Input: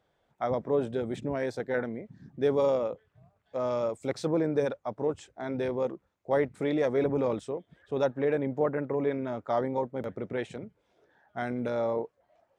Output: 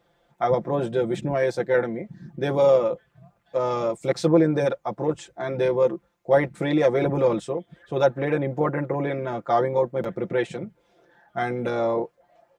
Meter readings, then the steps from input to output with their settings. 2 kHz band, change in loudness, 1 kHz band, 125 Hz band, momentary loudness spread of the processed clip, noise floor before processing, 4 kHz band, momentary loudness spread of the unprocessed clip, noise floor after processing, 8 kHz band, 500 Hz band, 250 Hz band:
+7.5 dB, +6.5 dB, +8.0 dB, +8.5 dB, 11 LU, -75 dBFS, +8.0 dB, 11 LU, -67 dBFS, n/a, +6.5 dB, +6.0 dB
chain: comb 5.8 ms, depth 81%; gain +5.5 dB

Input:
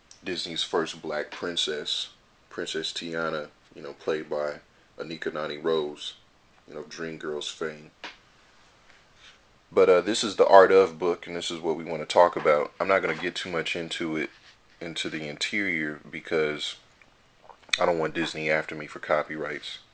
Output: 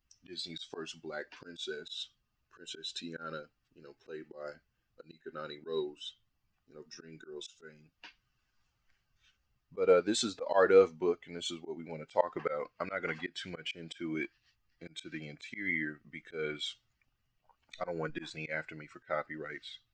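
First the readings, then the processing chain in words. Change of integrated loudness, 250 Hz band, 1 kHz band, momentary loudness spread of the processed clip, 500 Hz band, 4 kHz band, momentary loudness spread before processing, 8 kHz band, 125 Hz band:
-9.0 dB, -8.5 dB, -13.0 dB, 20 LU, -9.0 dB, -10.5 dB, 17 LU, -8.0 dB, -7.5 dB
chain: per-bin expansion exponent 1.5; auto swell 0.156 s; gain -2.5 dB

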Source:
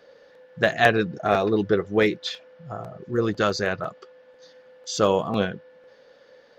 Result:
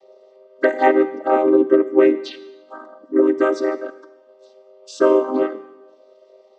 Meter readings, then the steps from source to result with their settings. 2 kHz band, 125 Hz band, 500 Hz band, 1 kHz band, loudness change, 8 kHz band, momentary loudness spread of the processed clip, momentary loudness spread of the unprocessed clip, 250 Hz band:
-2.5 dB, under -20 dB, +7.0 dB, +4.0 dB, +5.5 dB, n/a, 11 LU, 17 LU, +7.5 dB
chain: chord vocoder minor triad, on C4; envelope phaser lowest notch 260 Hz, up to 4500 Hz, full sweep at -21 dBFS; Schroeder reverb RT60 1.1 s, combs from 33 ms, DRR 14 dB; gain +7 dB

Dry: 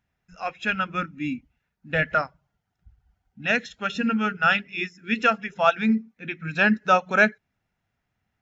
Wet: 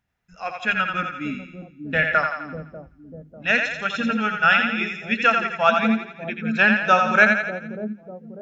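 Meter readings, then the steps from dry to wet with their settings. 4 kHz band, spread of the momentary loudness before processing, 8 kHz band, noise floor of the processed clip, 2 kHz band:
+3.5 dB, 11 LU, n/a, -51 dBFS, +5.0 dB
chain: de-hum 51.2 Hz, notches 8; dynamic EQ 2000 Hz, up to +4 dB, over -29 dBFS, Q 0.87; on a send: split-band echo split 520 Hz, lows 0.595 s, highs 85 ms, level -5 dB

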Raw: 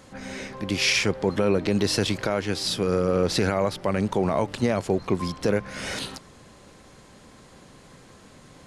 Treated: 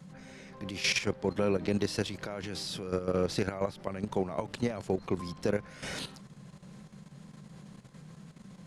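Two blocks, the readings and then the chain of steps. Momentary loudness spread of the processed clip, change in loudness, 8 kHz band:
21 LU, -8.0 dB, -8.5 dB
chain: band noise 130–210 Hz -42 dBFS; level quantiser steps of 11 dB; gain -5 dB

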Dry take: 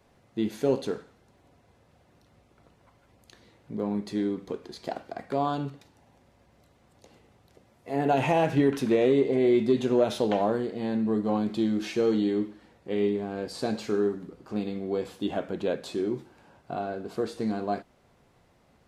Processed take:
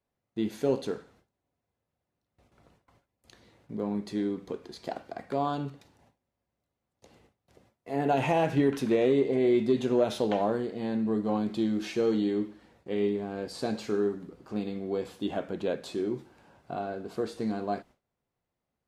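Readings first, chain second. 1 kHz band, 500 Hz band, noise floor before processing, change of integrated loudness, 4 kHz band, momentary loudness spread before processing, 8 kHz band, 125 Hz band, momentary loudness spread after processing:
-2.0 dB, -2.0 dB, -63 dBFS, -2.0 dB, -2.0 dB, 14 LU, n/a, -2.0 dB, 14 LU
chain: gate with hold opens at -49 dBFS; gain -2 dB

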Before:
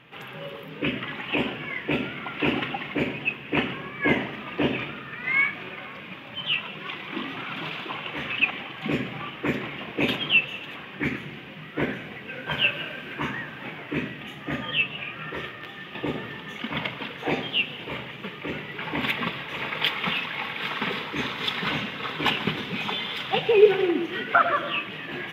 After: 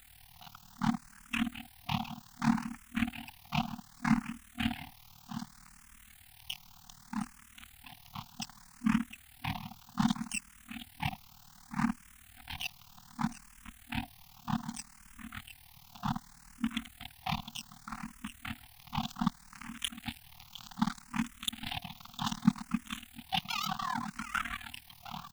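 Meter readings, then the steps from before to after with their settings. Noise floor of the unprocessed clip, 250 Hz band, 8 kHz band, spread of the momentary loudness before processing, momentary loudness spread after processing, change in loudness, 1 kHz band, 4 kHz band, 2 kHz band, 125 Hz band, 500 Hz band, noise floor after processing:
-41 dBFS, -4.5 dB, n/a, 13 LU, 20 LU, -10.5 dB, -8.5 dB, -12.5 dB, -16.0 dB, -4.5 dB, -30.0 dB, -58 dBFS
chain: in parallel at 0 dB: limiter -16 dBFS, peak gain reduction 11 dB; on the sum: reverb removal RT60 1 s; graphic EQ 125/250/500/1000/2000/4000/8000 Hz -7/+11/+11/-8/-12/+4/-9 dB; crossover distortion -20.5 dBFS; added noise pink -51 dBFS; FFT band-reject 240–700 Hz; high shelf 7300 Hz +6 dB; on a send: echo 0.709 s -12.5 dB; on the sum: AM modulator 38 Hz, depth 75%; endless phaser +0.65 Hz

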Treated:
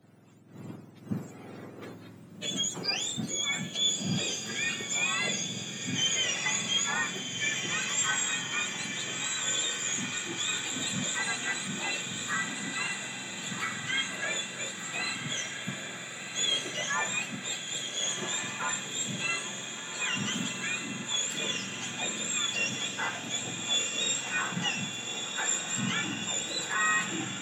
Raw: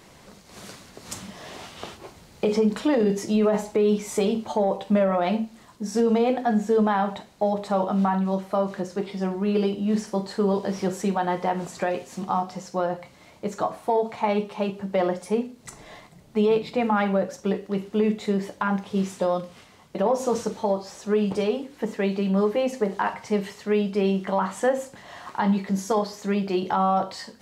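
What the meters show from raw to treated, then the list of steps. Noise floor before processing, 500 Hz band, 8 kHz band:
-51 dBFS, -20.5 dB, +12.5 dB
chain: spectrum mirrored in octaves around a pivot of 1200 Hz; in parallel at -1 dB: limiter -24 dBFS, peak gain reduction 11 dB; on the sum: diffused feedback echo 1.435 s, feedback 73%, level -4.5 dB; three-band expander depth 40%; gain -8.5 dB

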